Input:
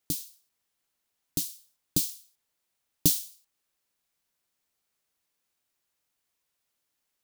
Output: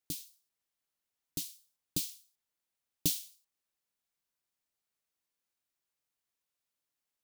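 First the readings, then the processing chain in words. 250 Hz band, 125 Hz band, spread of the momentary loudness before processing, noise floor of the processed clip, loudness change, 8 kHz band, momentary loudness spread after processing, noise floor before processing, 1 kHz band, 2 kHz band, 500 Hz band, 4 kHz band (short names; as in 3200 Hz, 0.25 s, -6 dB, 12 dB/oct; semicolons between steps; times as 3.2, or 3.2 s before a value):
-8.5 dB, -8.5 dB, 21 LU, under -85 dBFS, -8.0 dB, -7.5 dB, 21 LU, -81 dBFS, n/a, -2.0 dB, -8.0 dB, -5.0 dB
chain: dynamic EQ 2500 Hz, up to +7 dB, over -49 dBFS, Q 0.82; gain -8.5 dB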